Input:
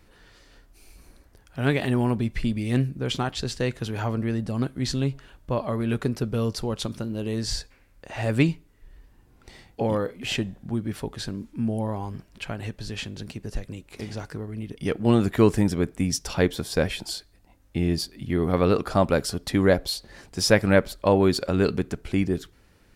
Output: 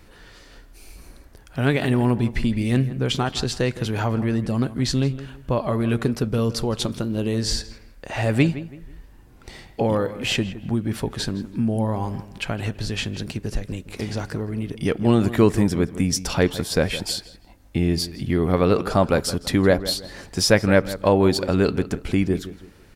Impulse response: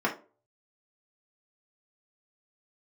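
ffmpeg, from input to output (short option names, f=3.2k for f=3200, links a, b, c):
-filter_complex "[0:a]asplit=2[a][b];[b]acompressor=threshold=-29dB:ratio=6,volume=1.5dB[c];[a][c]amix=inputs=2:normalize=0,asplit=2[d][e];[e]adelay=164,lowpass=f=2.5k:p=1,volume=-14dB,asplit=2[f][g];[g]adelay=164,lowpass=f=2.5k:p=1,volume=0.33,asplit=2[h][i];[i]adelay=164,lowpass=f=2.5k:p=1,volume=0.33[j];[d][f][h][j]amix=inputs=4:normalize=0"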